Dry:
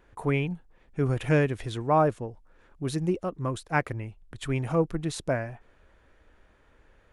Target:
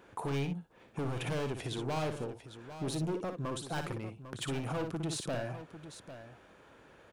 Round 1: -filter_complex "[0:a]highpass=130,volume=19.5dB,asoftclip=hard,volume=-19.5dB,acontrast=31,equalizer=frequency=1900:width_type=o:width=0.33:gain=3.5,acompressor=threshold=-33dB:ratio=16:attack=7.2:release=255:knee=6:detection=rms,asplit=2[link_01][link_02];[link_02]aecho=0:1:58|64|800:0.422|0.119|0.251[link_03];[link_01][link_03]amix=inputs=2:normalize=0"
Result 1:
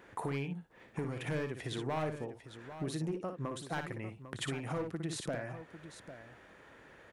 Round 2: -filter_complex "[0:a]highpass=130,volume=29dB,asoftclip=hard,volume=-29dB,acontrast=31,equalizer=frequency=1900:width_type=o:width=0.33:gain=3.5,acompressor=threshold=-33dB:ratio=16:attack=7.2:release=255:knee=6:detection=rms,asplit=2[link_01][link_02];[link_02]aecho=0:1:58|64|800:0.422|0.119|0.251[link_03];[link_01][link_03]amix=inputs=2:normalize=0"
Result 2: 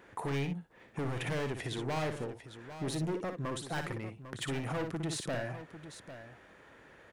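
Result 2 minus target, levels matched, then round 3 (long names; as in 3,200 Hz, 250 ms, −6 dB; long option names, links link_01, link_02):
2,000 Hz band +3.0 dB
-filter_complex "[0:a]highpass=130,volume=29dB,asoftclip=hard,volume=-29dB,acontrast=31,equalizer=frequency=1900:width_type=o:width=0.33:gain=-5.5,acompressor=threshold=-33dB:ratio=16:attack=7.2:release=255:knee=6:detection=rms,asplit=2[link_01][link_02];[link_02]aecho=0:1:58|64|800:0.422|0.119|0.251[link_03];[link_01][link_03]amix=inputs=2:normalize=0"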